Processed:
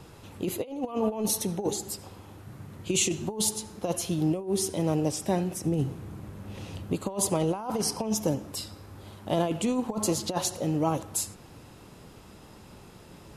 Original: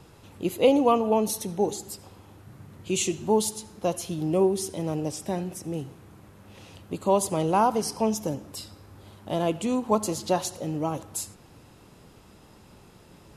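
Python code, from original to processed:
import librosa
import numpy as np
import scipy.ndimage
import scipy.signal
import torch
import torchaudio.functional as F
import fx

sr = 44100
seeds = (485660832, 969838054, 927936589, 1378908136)

y = fx.low_shelf(x, sr, hz=390.0, db=8.0, at=(5.64, 6.93))
y = fx.over_compress(y, sr, threshold_db=-26.0, ratio=-0.5)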